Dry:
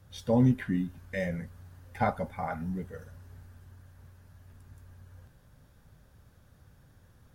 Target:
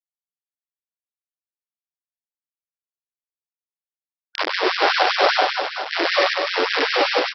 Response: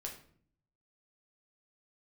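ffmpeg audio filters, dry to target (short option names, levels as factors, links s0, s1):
-filter_complex "[0:a]areverse,highpass=160,equalizer=f=3700:t=o:w=0.76:g=-10[s0];[1:a]atrim=start_sample=2205,asetrate=70560,aresample=44100[s1];[s0][s1]afir=irnorm=-1:irlink=0,acompressor=threshold=0.00891:ratio=8,aresample=11025,acrusher=bits=5:dc=4:mix=0:aa=0.000001,aresample=44100,aecho=1:1:100|250|475|812.5|1319:0.631|0.398|0.251|0.158|0.1,alimiter=level_in=50.1:limit=0.891:release=50:level=0:latency=1,afftfilt=real='re*gte(b*sr/1024,270*pow(1600/270,0.5+0.5*sin(2*PI*5.1*pts/sr)))':imag='im*gte(b*sr/1024,270*pow(1600/270,0.5+0.5*sin(2*PI*5.1*pts/sr)))':win_size=1024:overlap=0.75"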